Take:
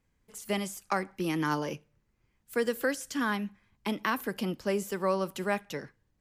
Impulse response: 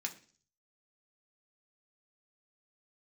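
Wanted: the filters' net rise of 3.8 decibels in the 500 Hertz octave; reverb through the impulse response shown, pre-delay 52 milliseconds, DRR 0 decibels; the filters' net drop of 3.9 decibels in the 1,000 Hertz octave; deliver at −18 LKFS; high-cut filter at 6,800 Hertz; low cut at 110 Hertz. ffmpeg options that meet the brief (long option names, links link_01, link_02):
-filter_complex "[0:a]highpass=110,lowpass=6800,equalizer=frequency=500:width_type=o:gain=6,equalizer=frequency=1000:width_type=o:gain=-6.5,asplit=2[link_01][link_02];[1:a]atrim=start_sample=2205,adelay=52[link_03];[link_02][link_03]afir=irnorm=-1:irlink=0,volume=0dB[link_04];[link_01][link_04]amix=inputs=2:normalize=0,volume=11dB"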